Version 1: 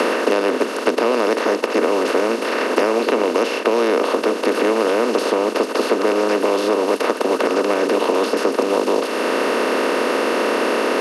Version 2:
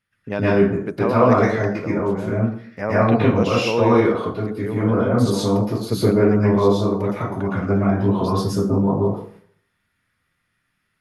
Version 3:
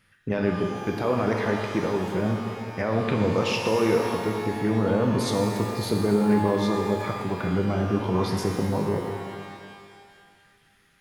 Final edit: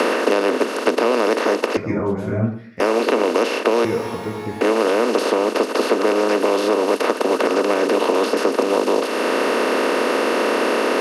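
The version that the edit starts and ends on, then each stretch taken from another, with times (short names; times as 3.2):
1
1.77–2.8 from 2
3.85–4.61 from 3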